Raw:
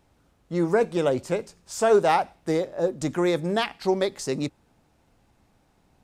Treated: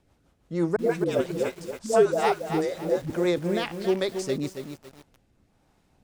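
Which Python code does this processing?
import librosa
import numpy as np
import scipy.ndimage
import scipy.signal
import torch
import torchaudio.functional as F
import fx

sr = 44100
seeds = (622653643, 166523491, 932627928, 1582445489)

y = fx.dispersion(x, sr, late='highs', ms=140.0, hz=410.0, at=(0.76, 3.1))
y = fx.rotary_switch(y, sr, hz=6.0, then_hz=1.1, switch_at_s=3.25)
y = fx.echo_crushed(y, sr, ms=277, feedback_pct=35, bits=7, wet_db=-7.5)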